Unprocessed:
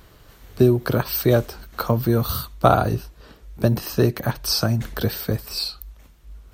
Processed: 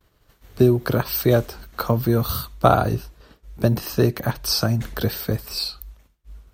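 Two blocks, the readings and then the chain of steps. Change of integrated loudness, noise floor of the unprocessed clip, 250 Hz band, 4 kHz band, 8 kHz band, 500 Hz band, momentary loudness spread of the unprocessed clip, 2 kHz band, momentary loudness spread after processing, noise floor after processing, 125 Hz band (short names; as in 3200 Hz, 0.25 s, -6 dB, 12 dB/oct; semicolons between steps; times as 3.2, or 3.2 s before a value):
0.0 dB, -50 dBFS, 0.0 dB, 0.0 dB, 0.0 dB, 0.0 dB, 9 LU, 0.0 dB, 9 LU, -62 dBFS, 0.0 dB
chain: expander -40 dBFS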